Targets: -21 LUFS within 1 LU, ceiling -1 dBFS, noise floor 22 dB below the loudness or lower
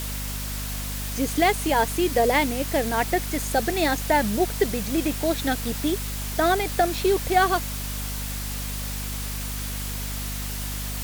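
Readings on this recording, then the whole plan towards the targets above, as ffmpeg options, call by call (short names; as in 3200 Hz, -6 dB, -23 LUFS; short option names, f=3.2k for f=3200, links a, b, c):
hum 50 Hz; harmonics up to 250 Hz; hum level -30 dBFS; noise floor -31 dBFS; noise floor target -47 dBFS; loudness -24.5 LUFS; peak -7.0 dBFS; loudness target -21.0 LUFS
-> -af "bandreject=f=50:t=h:w=6,bandreject=f=100:t=h:w=6,bandreject=f=150:t=h:w=6,bandreject=f=200:t=h:w=6,bandreject=f=250:t=h:w=6"
-af "afftdn=nr=16:nf=-31"
-af "volume=3.5dB"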